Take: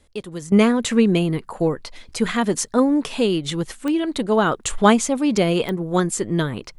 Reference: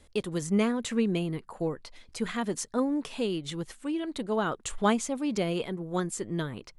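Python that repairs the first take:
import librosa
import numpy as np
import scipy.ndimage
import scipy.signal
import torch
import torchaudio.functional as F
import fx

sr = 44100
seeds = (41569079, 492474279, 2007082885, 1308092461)

y = fx.fix_declick_ar(x, sr, threshold=10.0)
y = fx.gain(y, sr, db=fx.steps((0.0, 0.0), (0.52, -10.5)))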